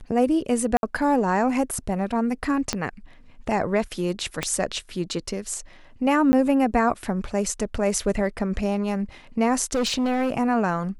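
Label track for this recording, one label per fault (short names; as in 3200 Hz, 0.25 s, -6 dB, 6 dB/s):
0.770000	0.830000	gap 61 ms
2.730000	2.730000	pop -9 dBFS
4.430000	4.430000	pop -10 dBFS
6.320000	6.330000	gap 10 ms
9.730000	10.320000	clipped -19.5 dBFS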